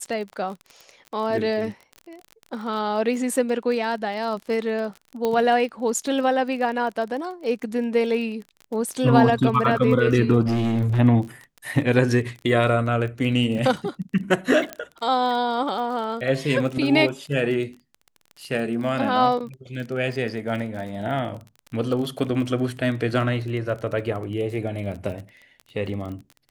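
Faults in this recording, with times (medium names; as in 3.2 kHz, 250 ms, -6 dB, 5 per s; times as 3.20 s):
crackle 28 per s -31 dBFS
5.25 s: pop -12 dBFS
10.46–11.00 s: clipped -18.5 dBFS
14.73 s: pop -14 dBFS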